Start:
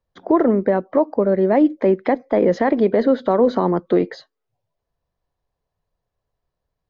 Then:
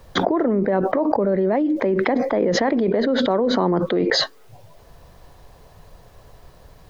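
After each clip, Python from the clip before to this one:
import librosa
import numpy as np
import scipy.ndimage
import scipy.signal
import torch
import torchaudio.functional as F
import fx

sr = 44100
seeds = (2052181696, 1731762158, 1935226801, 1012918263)

y = fx.env_flatten(x, sr, amount_pct=100)
y = y * 10.0 ** (-8.0 / 20.0)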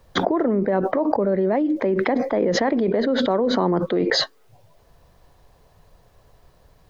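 y = fx.upward_expand(x, sr, threshold_db=-32.0, expansion=1.5)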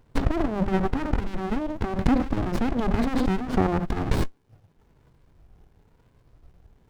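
y = fx.spec_ripple(x, sr, per_octave=1.0, drift_hz=1.0, depth_db=14)
y = fx.running_max(y, sr, window=65)
y = y * 10.0 ** (-2.0 / 20.0)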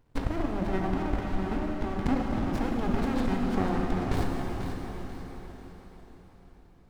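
y = fx.echo_feedback(x, sr, ms=490, feedback_pct=37, wet_db=-9)
y = fx.rev_plate(y, sr, seeds[0], rt60_s=4.8, hf_ratio=0.95, predelay_ms=0, drr_db=0.0)
y = y * 10.0 ** (-7.0 / 20.0)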